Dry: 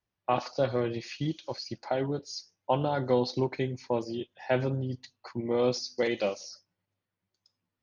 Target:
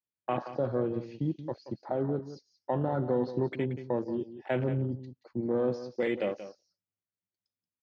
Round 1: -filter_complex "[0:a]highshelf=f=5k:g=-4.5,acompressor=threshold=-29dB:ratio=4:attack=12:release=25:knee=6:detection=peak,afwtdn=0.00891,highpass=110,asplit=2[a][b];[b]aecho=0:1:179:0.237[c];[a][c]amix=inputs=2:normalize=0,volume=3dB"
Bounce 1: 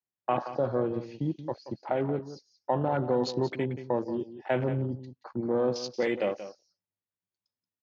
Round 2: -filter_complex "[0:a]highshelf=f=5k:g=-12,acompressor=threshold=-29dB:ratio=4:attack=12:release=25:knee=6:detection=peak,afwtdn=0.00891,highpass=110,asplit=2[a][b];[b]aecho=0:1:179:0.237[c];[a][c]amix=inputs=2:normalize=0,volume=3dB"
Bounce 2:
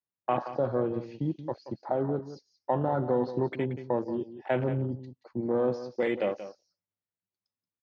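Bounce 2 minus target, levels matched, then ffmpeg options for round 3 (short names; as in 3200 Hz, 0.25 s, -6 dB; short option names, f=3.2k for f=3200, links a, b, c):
1000 Hz band +3.0 dB
-filter_complex "[0:a]highshelf=f=5k:g=-12,acompressor=threshold=-29dB:ratio=4:attack=12:release=25:knee=6:detection=peak,afwtdn=0.00891,highpass=110,equalizer=f=900:w=0.95:g=-5,asplit=2[a][b];[b]aecho=0:1:179:0.237[c];[a][c]amix=inputs=2:normalize=0,volume=3dB"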